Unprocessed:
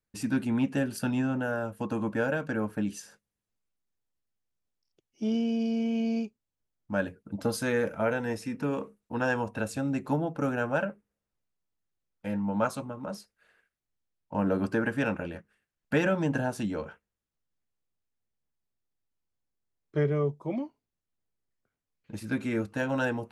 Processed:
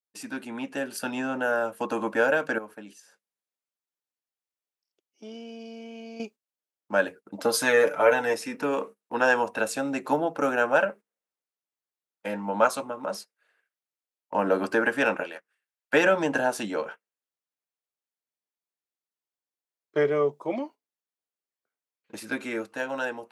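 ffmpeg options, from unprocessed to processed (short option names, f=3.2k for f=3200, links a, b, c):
-filter_complex "[0:a]asettb=1/sr,asplit=3[a][b][c];[a]atrim=end=2.584[d];[b]atrim=start=2.58:end=6.2,asetpts=PTS-STARTPTS,afade=t=in:d=0.004:c=qsin,afade=t=out:st=3.616:d=0.004:c=qsin,acompressor=threshold=-49dB:ratio=2:attack=3.2:release=140:knee=1:detection=peak[e];[c]atrim=start=6.196[f];[d][e]acrossfade=d=0.004:c1=hsin:c2=qsin[g];[g][f]acrossfade=d=0.004:c1=qsin:c2=hsin,asettb=1/sr,asplit=3[h][i][j];[h]atrim=end=7.534[k];[i]atrim=start=7.53:end=8.34,asetpts=PTS-STARTPTS,afade=t=in:d=0.004:c=qsin,afade=t=out:st=0.806:d=0.004:c=qsin,aecho=1:1:6.8:0.76,atrim=end_sample=35721[l];[j]atrim=start=8.336[m];[k][l]acrossfade=d=0.004:c1=hsin:c2=qsin[n];[n][m]acrossfade=d=0.004:c1=qsin:c2=hsin,asettb=1/sr,asplit=3[o][p][q];[o]atrim=end=15.234[r];[p]atrim=start=15.23:end=15.94,asetpts=PTS-STARTPTS,afade=t=in:d=0.004:c=qsin,afade=t=out:st=0.706:d=0.004:c=qsin,highpass=f=810:p=1[s];[q]atrim=start=15.936[t];[r][s]acrossfade=d=0.004:c1=hsin:c2=qsin[u];[u][t]acrossfade=d=0.004:c1=qsin:c2=hsin,agate=range=-12dB:threshold=-45dB:ratio=16:detection=peak,highpass=420,dynaudnorm=f=130:g=17:m=8dB"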